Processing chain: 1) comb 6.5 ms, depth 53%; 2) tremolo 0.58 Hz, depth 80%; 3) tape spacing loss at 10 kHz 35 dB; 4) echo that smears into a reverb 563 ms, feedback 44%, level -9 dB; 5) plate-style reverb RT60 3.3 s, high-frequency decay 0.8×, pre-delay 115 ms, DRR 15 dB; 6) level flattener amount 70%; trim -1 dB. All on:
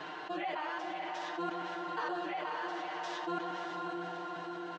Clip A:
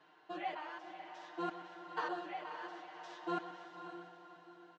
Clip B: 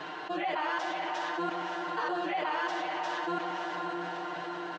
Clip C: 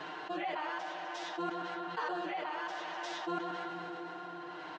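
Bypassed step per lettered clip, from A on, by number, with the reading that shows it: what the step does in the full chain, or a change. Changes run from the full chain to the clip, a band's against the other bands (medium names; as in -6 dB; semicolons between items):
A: 6, crest factor change +4.5 dB; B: 2, 125 Hz band -2.0 dB; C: 4, momentary loudness spread change +3 LU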